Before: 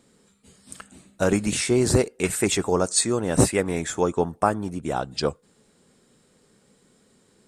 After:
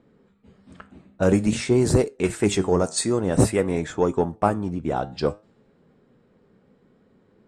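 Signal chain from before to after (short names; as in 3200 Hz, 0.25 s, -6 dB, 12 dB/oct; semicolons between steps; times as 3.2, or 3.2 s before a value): low-pass opened by the level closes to 2300 Hz, open at -16.5 dBFS; tilt shelf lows +3.5 dB, about 1200 Hz; in parallel at -4.5 dB: soft clip -12.5 dBFS, distortion -13 dB; on the sum: flange 0.51 Hz, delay 6.2 ms, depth 6.6 ms, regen +80%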